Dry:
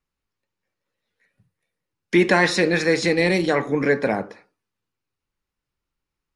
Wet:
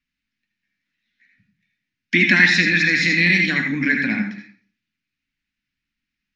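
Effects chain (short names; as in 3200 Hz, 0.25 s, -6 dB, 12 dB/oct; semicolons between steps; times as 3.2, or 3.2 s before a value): EQ curve 130 Hz 0 dB, 260 Hz +10 dB, 450 Hz -17 dB, 1100 Hz -8 dB, 1700 Hz +10 dB, 2500 Hz +12 dB, 6100 Hz +4 dB, 10000 Hz -15 dB; on a send: reverb RT60 0.45 s, pre-delay 70 ms, DRR 3.5 dB; on the sum: gain -4 dB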